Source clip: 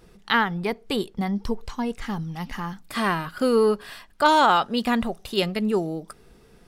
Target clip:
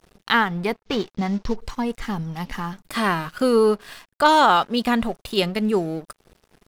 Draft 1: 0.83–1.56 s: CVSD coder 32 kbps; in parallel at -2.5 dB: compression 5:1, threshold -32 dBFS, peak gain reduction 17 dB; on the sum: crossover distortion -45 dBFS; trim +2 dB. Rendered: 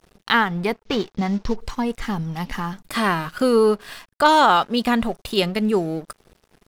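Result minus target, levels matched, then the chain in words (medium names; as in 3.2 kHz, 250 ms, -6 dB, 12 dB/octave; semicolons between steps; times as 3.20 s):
compression: peak gain reduction -8.5 dB
0.83–1.56 s: CVSD coder 32 kbps; in parallel at -2.5 dB: compression 5:1, threshold -42.5 dBFS, peak gain reduction 25 dB; on the sum: crossover distortion -45 dBFS; trim +2 dB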